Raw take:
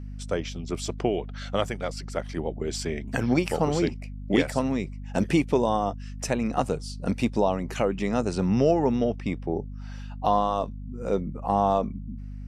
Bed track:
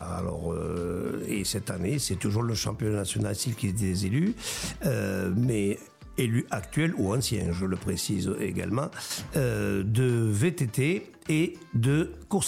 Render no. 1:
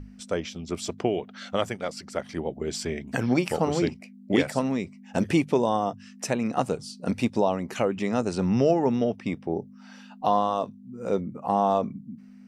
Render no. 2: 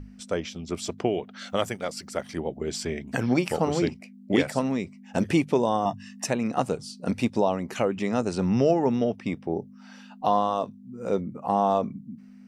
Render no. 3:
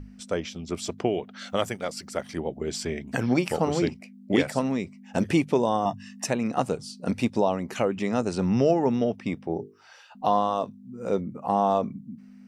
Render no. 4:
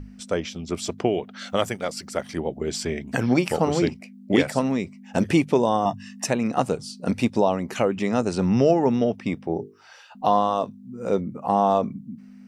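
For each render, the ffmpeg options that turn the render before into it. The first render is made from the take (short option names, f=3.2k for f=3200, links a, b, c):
-af "bandreject=f=50:t=h:w=6,bandreject=f=100:t=h:w=6,bandreject=f=150:t=h:w=6"
-filter_complex "[0:a]asettb=1/sr,asplit=3[a][b][c];[a]atrim=end=1.394[d];[b]atrim=start=1.39:end=2.38,asetpts=PTS-STARTPTS,afade=t=in:d=0.004:c=qsin,afade=t=out:st=0.986:d=0.004:c=qsin,highshelf=f=9.5k:g=11.5[e];[c]atrim=start=2.376[f];[d][e]acrossfade=d=0.004:c1=hsin:c2=qsin[g];[g][f]acrossfade=d=0.004:c1=qsin:c2=hsin,asettb=1/sr,asplit=3[h][i][j];[h]atrim=end=5.854[k];[i]atrim=start=5.85:end=6.26,asetpts=PTS-STARTPTS,afade=t=in:d=0.004:c=qsin,afade=t=out:st=0.406:d=0.004:c=qsin,aecho=1:1:1.1:0.96,atrim=end_sample=18081[l];[j]atrim=start=6.256[m];[k][l]acrossfade=d=0.004:c1=hsin:c2=qsin[n];[n][m]acrossfade=d=0.004:c1=qsin:c2=hsin"
-filter_complex "[0:a]asettb=1/sr,asplit=3[a][b][c];[a]atrim=end=9.454[d];[b]atrim=start=9.45:end=10.15,asetpts=PTS-STARTPTS,afade=t=in:d=0.004:c=qsin,afade=t=out:st=0.696:d=0.004:c=qsin,bandreject=f=50:t=h:w=6,bandreject=f=100:t=h:w=6,bandreject=f=150:t=h:w=6,bandreject=f=200:t=h:w=6,bandreject=f=250:t=h:w=6,bandreject=f=300:t=h:w=6,bandreject=f=350:t=h:w=6,bandreject=f=400:t=h:w=6,bandreject=f=450:t=h:w=6[e];[c]atrim=start=10.146[f];[d][e]acrossfade=d=0.004:c1=hsin:c2=qsin[g];[g][f]acrossfade=d=0.004:c1=qsin:c2=hsin"
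-af "volume=3dB"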